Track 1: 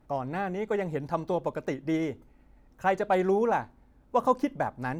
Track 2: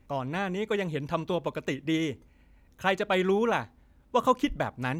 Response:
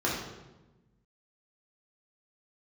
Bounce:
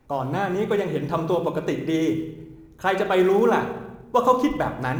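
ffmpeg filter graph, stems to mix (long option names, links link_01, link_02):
-filter_complex "[0:a]alimiter=limit=-23.5dB:level=0:latency=1,volume=-0.5dB[link_01];[1:a]volume=-0.5dB,asplit=2[link_02][link_03];[link_03]volume=-11dB[link_04];[2:a]atrim=start_sample=2205[link_05];[link_04][link_05]afir=irnorm=-1:irlink=0[link_06];[link_01][link_02][link_06]amix=inputs=3:normalize=0,acrusher=bits=9:mode=log:mix=0:aa=0.000001"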